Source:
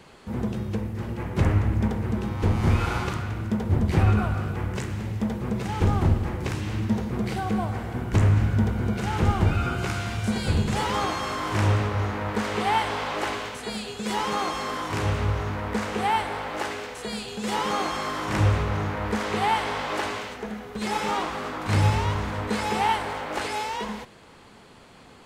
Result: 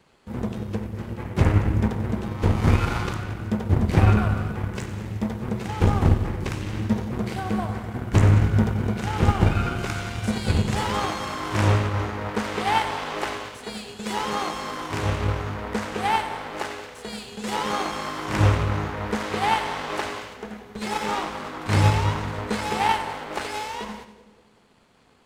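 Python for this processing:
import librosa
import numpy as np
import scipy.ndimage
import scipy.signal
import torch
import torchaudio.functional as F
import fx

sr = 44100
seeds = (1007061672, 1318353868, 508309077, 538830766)

y = fx.power_curve(x, sr, exponent=1.4)
y = fx.echo_split(y, sr, split_hz=590.0, low_ms=186, high_ms=92, feedback_pct=52, wet_db=-13.0)
y = y * 10.0 ** (5.0 / 20.0)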